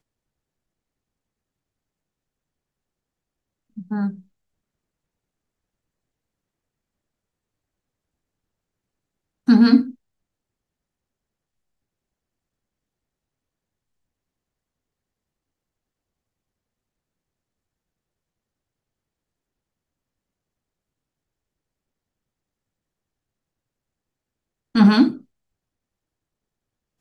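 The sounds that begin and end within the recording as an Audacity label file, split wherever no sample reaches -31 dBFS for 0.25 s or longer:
3.780000	4.100000	sound
9.480000	9.910000	sound
24.750000	25.170000	sound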